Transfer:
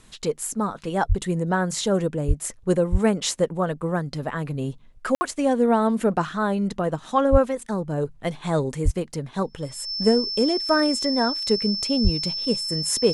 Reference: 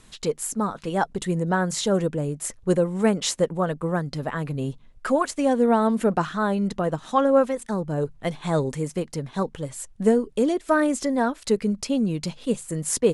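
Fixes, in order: notch 5300 Hz, Q 30; de-plosive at 1.08/2.27/2.91/7.31/8.84/12.03; room tone fill 5.15–5.21

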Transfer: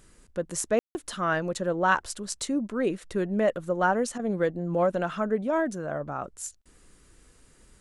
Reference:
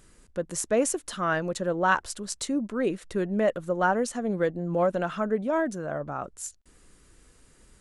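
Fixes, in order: room tone fill 0.79–0.95; interpolate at 4.18, 12 ms

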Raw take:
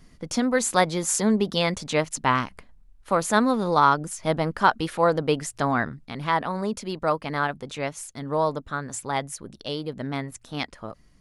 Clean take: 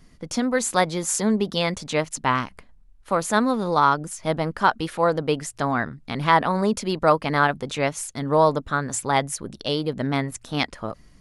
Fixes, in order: gain 0 dB, from 6.05 s +6 dB

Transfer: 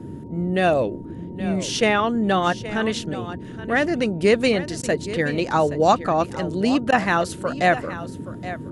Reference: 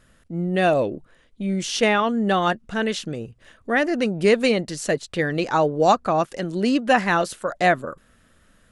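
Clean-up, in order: notch 930 Hz, Q 30; interpolate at 4.82/6.91, 11 ms; noise print and reduce 23 dB; inverse comb 0.823 s -14 dB

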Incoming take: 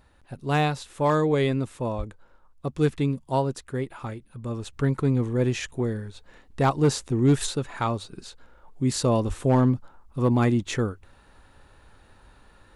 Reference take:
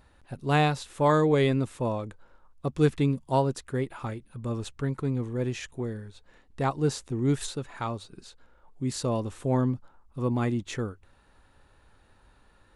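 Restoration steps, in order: clip repair -13 dBFS; 1.97–2.09 HPF 140 Hz 24 dB/oct; 9.27–9.39 HPF 140 Hz 24 dB/oct; gain 0 dB, from 4.73 s -6 dB

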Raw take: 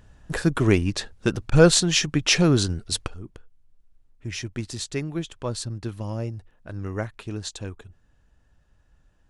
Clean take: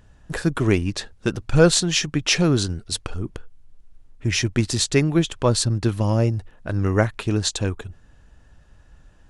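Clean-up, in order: interpolate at 1.5, 16 ms; gain 0 dB, from 3.08 s +10.5 dB

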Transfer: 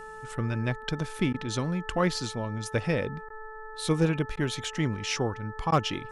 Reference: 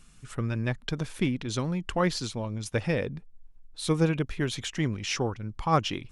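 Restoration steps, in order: clip repair -14.5 dBFS; de-hum 435.8 Hz, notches 4; interpolate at 1.33/3.29/4.36/5.71, 10 ms

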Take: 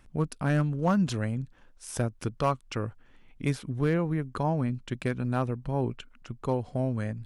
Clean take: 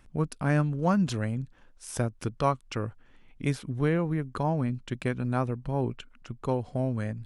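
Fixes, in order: clip repair -16.5 dBFS

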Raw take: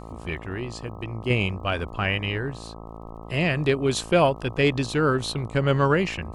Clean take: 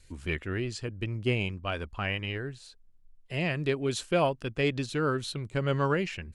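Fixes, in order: de-click; de-hum 55.7 Hz, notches 23; gain 0 dB, from 1.3 s -6.5 dB

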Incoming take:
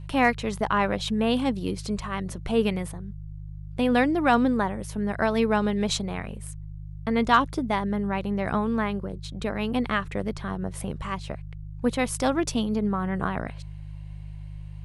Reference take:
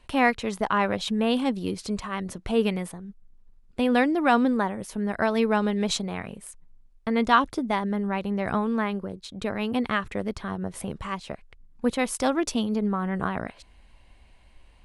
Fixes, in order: clip repair -8.5 dBFS; de-hum 50.9 Hz, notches 3

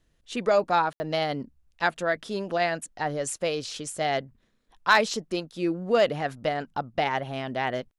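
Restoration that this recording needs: clip repair -10 dBFS; room tone fill 0.93–1

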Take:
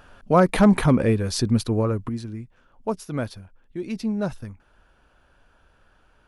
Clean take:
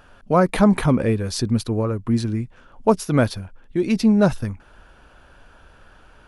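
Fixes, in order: clip repair -7.5 dBFS; gain correction +10 dB, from 2.09

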